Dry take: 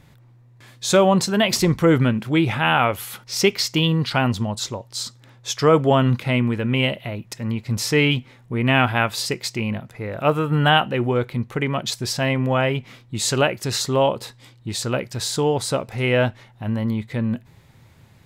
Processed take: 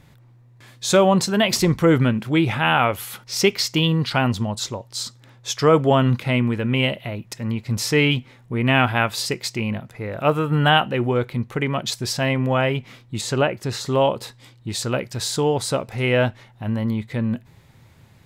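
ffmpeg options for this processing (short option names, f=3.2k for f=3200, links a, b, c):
-filter_complex "[0:a]asettb=1/sr,asplit=3[a][b][c];[a]atrim=end=13.214[d];[b]atrim=start=13.21:end=13.86,asetpts=PTS-STARTPTS,afade=t=in:d=0.004:c=qsin,afade=t=out:st=0.646:d=0.004:c=qsin,highshelf=f=2.8k:g=-9[e];[c]atrim=start=13.856[f];[d][e]acrossfade=d=0.004:c1=hsin:c2=qsin[g];[g][f]acrossfade=d=0.004:c1=qsin:c2=hsin"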